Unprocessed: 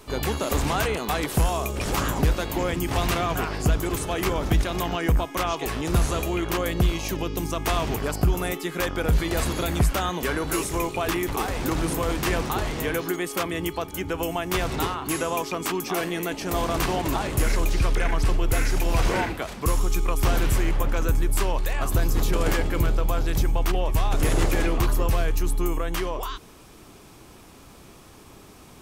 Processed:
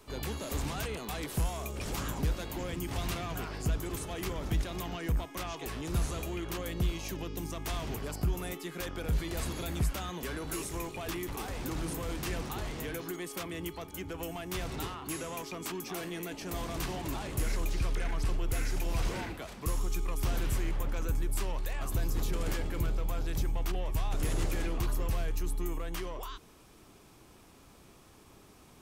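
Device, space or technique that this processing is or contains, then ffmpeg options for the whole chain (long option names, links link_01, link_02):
one-band saturation: -filter_complex "[0:a]acrossover=split=280|2800[link_01][link_02][link_03];[link_02]asoftclip=type=tanh:threshold=-28.5dB[link_04];[link_01][link_04][link_03]amix=inputs=3:normalize=0,volume=-9dB"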